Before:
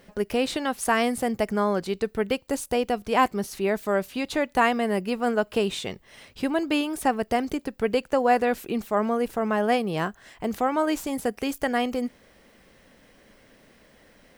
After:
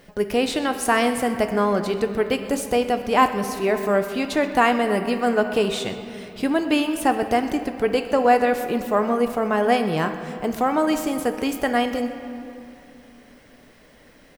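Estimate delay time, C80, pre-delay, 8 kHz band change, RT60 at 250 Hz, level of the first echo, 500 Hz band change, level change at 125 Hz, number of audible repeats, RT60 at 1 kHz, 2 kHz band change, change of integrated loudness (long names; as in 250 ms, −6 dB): 127 ms, 9.5 dB, 3 ms, +3.5 dB, 3.7 s, −18.5 dB, +4.0 dB, +3.5 dB, 1, 2.8 s, +3.5 dB, +4.0 dB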